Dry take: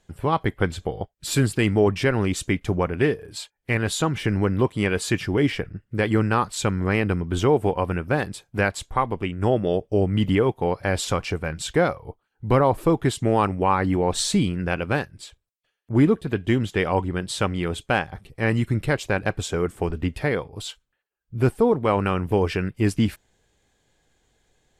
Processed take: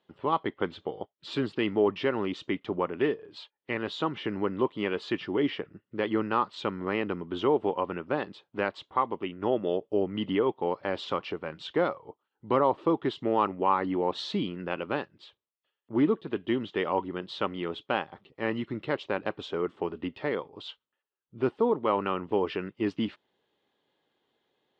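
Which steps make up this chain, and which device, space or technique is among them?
phone earpiece (cabinet simulation 330–3400 Hz, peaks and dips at 480 Hz -4 dB, 710 Hz -7 dB, 1.6 kHz -9 dB, 2.3 kHz -9 dB); trim -1 dB

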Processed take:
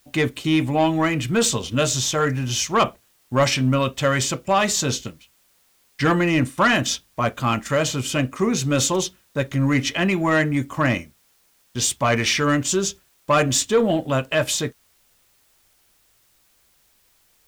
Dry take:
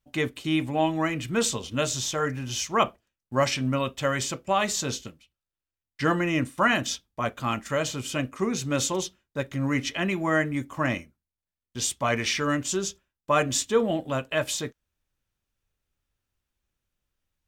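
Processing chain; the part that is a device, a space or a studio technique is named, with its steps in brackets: open-reel tape (saturation -17 dBFS, distortion -16 dB; peaking EQ 130 Hz +2.5 dB; white noise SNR 39 dB); trim +7 dB

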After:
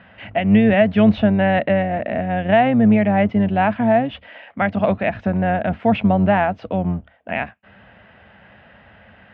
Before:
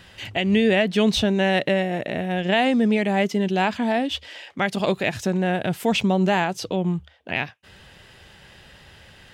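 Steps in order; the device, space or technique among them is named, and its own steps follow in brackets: 0.49–1.13 s: treble shelf 6.7 kHz +11 dB; sub-octave bass pedal (octave divider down 1 oct, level -4 dB; cabinet simulation 88–2400 Hz, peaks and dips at 150 Hz -6 dB, 210 Hz +7 dB, 370 Hz -8 dB, 670 Hz +8 dB, 1.4 kHz +3 dB); trim +1.5 dB

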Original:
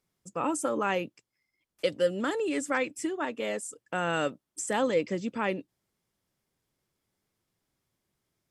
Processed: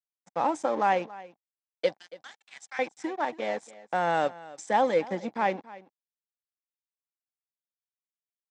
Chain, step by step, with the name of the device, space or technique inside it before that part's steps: 1.97–2.79 s: Bessel high-pass 2.3 kHz, order 8; blown loudspeaker (crossover distortion -42 dBFS; cabinet simulation 210–5800 Hz, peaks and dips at 280 Hz -5 dB, 410 Hz -5 dB, 790 Hz +9 dB, 1.3 kHz -6 dB, 2.8 kHz -9 dB, 4.5 kHz -5 dB); delay 281 ms -19 dB; trim +4 dB

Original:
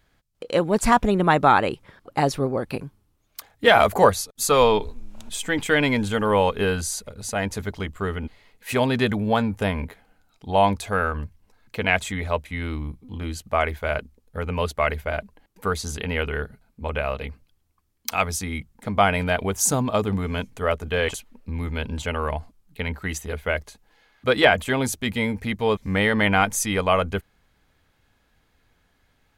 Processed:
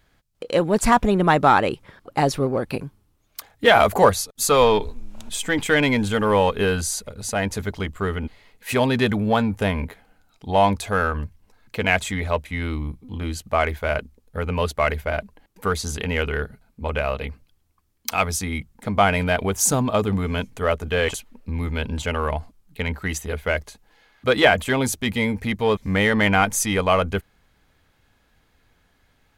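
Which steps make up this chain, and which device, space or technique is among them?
parallel distortion (in parallel at -9.5 dB: hard clipper -21.5 dBFS, distortion -6 dB)

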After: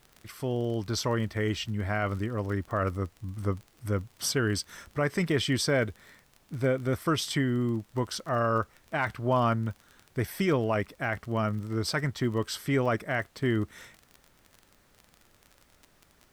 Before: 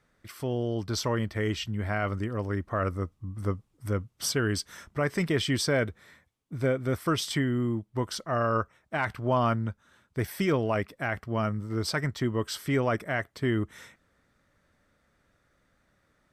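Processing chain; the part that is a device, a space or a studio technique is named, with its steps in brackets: vinyl LP (crackle 32 per s -37 dBFS; pink noise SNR 34 dB)

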